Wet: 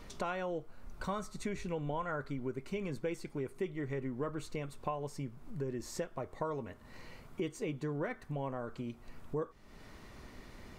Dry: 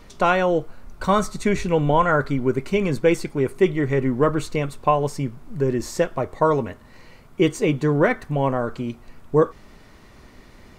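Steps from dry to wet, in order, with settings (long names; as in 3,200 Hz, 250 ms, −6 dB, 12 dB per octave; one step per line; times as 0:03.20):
downward compressor 2.5 to 1, threshold −37 dBFS, peak gain reduction 16.5 dB
level −4.5 dB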